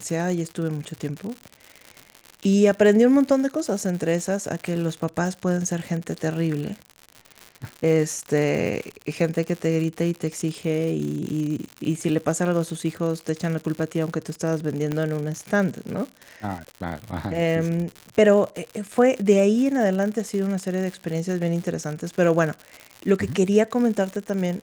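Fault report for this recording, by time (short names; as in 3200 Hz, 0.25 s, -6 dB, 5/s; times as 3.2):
crackle 120/s -29 dBFS
14.92 pop -14 dBFS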